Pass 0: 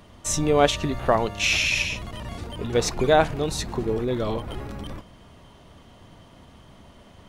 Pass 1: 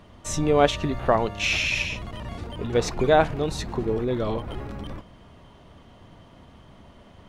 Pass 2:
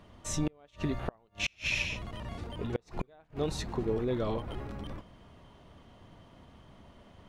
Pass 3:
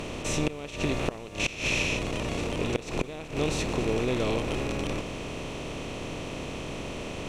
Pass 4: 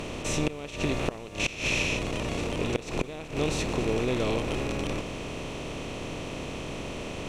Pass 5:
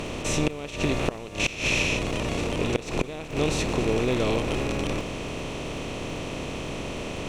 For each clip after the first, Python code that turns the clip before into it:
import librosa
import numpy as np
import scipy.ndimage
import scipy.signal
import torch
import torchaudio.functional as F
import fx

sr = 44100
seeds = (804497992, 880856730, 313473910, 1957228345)

y1 = fx.high_shelf(x, sr, hz=5200.0, db=-9.5)
y2 = fx.gate_flip(y1, sr, shuts_db=-13.0, range_db=-35)
y2 = F.gain(torch.from_numpy(y2), -5.5).numpy()
y3 = fx.bin_compress(y2, sr, power=0.4)
y4 = y3
y5 = fx.dmg_crackle(y4, sr, seeds[0], per_s=18.0, level_db=-42.0)
y5 = F.gain(torch.from_numpy(y5), 3.0).numpy()